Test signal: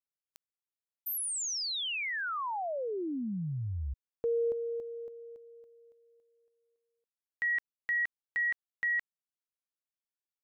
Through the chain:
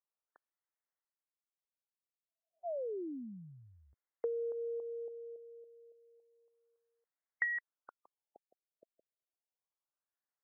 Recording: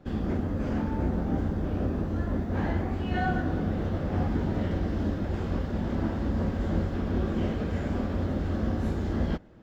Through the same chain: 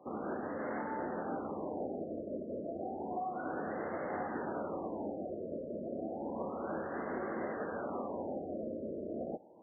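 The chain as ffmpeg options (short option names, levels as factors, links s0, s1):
-af "highpass=510,acompressor=threshold=0.00794:ratio=5:attack=66:release=177:knee=6:detection=peak,afftfilt=real='re*lt(b*sr/1024,650*pow(2200/650,0.5+0.5*sin(2*PI*0.31*pts/sr)))':imag='im*lt(b*sr/1024,650*pow(2200/650,0.5+0.5*sin(2*PI*0.31*pts/sr)))':win_size=1024:overlap=0.75,volume=1.58"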